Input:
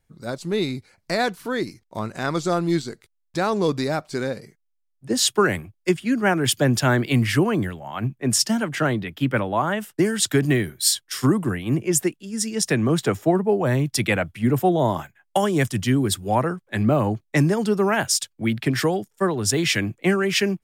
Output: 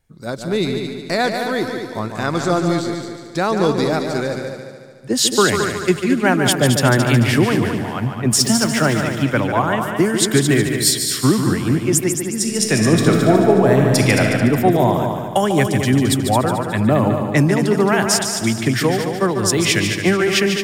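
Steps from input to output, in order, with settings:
0:08.32–0:09.01: converter with a step at zero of −32.5 dBFS
echo machine with several playback heads 73 ms, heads second and third, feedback 49%, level −7.5 dB
0:12.32–0:14.24: thrown reverb, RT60 2.2 s, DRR 2.5 dB
level +3.5 dB

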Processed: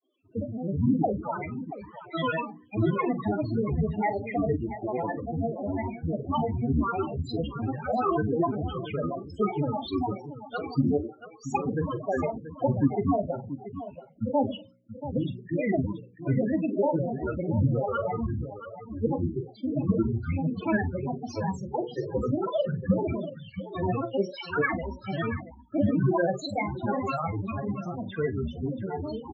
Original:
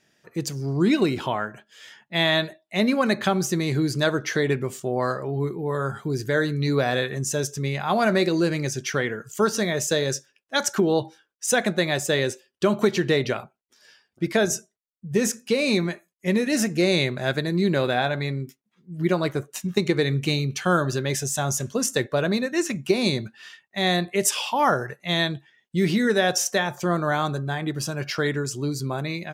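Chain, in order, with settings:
four-comb reverb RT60 0.4 s, combs from 33 ms, DRR 9 dB
granular cloud 100 ms, grains 20 per second, spray 17 ms, pitch spread up and down by 12 semitones
high-frequency loss of the air 110 metres
hum removal 60.21 Hz, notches 9
spectral peaks only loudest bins 8
multi-tap delay 43/681 ms −16/−12.5 dB
level −1.5 dB

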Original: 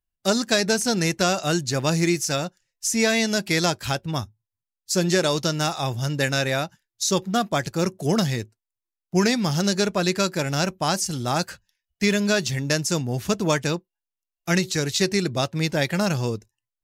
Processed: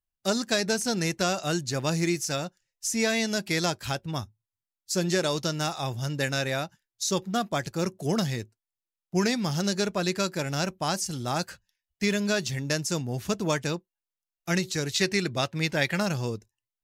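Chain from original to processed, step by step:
0:14.92–0:16.03: dynamic equaliser 2,100 Hz, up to +6 dB, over −37 dBFS, Q 0.79
level −5 dB

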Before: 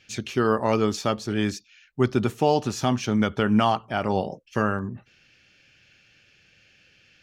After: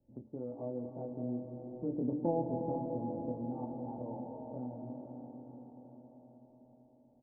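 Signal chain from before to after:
pitch glide at a constant tempo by +6.5 semitones starting unshifted
source passing by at 0:02.24, 27 m/s, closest 6.2 metres
Butterworth low-pass 840 Hz 48 dB per octave
low-shelf EQ 350 Hz +7.5 dB
comb filter 3.5 ms, depth 45%
hum removal 73.63 Hz, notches 4
downward compressor 1.5 to 1, threshold −41 dBFS, peak gain reduction 10 dB
ambience of single reflections 24 ms −4 dB, 53 ms −17.5 dB
convolution reverb RT60 4.3 s, pre-delay 169 ms, DRR 3 dB
multiband upward and downward compressor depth 40%
level −4.5 dB

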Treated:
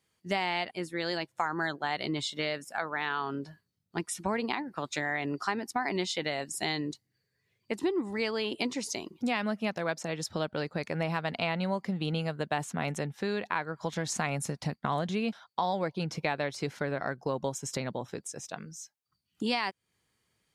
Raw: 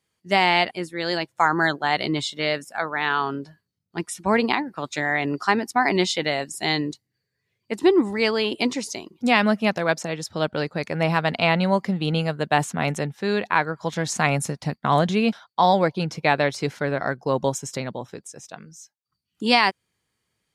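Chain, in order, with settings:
downward compressor 3 to 1, threshold −31 dBFS, peak gain reduction 14 dB

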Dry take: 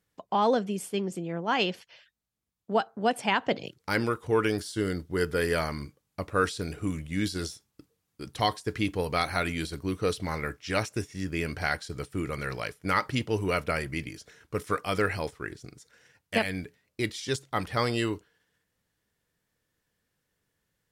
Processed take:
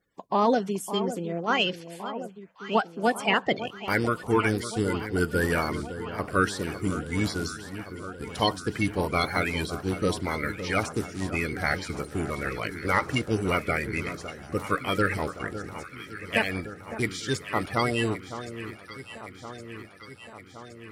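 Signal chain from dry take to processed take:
spectral magnitudes quantised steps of 30 dB
delay that swaps between a low-pass and a high-pass 559 ms, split 1,400 Hz, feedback 80%, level −11 dB
level +2.5 dB

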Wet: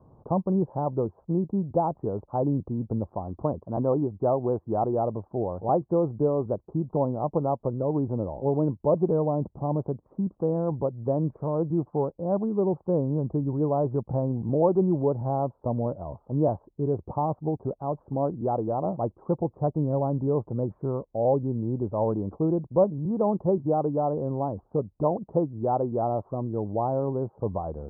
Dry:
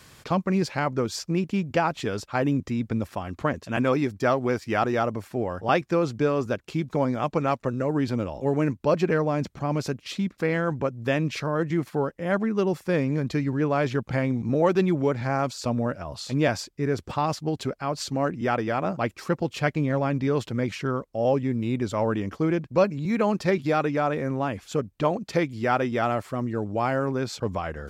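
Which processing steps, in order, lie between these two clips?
Butterworth low-pass 970 Hz 48 dB per octave
dynamic equaliser 250 Hz, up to −5 dB, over −43 dBFS, Q 4.2

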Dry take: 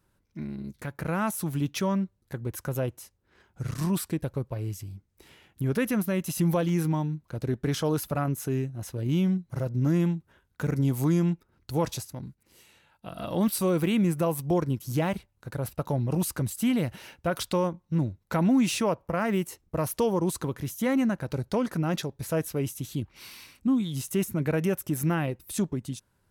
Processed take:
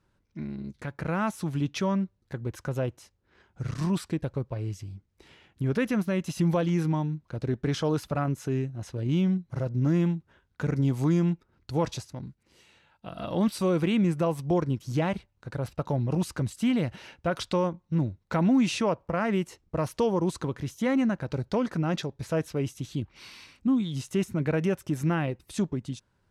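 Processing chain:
low-pass filter 6,000 Hz 12 dB per octave

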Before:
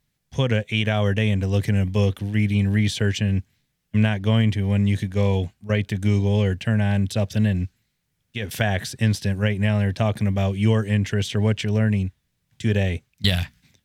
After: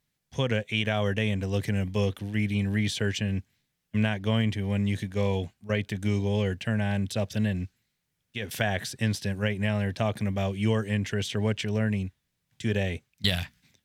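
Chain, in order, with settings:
low-shelf EQ 140 Hz −7 dB
level −3.5 dB

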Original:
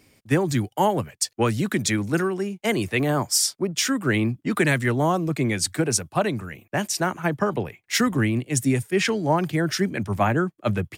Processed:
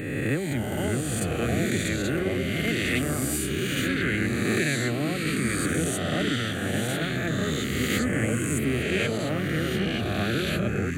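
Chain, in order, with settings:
peak hold with a rise ahead of every peak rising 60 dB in 1.89 s
delay with pitch and tempo change per echo 514 ms, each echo −4 semitones, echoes 2
phaser with its sweep stopped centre 2,300 Hz, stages 4
level −7 dB

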